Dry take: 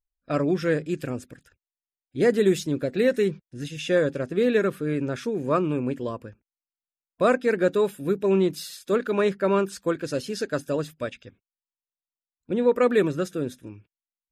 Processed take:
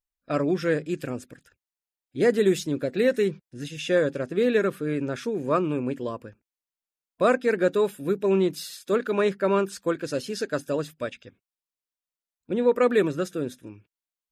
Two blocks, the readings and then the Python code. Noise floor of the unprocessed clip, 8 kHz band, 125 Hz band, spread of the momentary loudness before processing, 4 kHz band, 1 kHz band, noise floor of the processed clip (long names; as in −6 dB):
below −85 dBFS, 0.0 dB, −2.5 dB, 12 LU, 0.0 dB, 0.0 dB, below −85 dBFS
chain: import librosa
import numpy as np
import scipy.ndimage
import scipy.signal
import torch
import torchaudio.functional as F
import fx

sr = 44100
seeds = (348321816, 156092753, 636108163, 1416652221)

y = fx.low_shelf(x, sr, hz=110.0, db=-7.0)